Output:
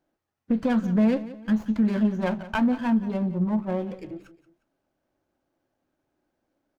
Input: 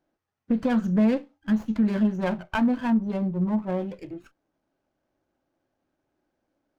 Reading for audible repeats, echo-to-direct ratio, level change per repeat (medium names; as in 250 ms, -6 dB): 2, -15.5 dB, -8.5 dB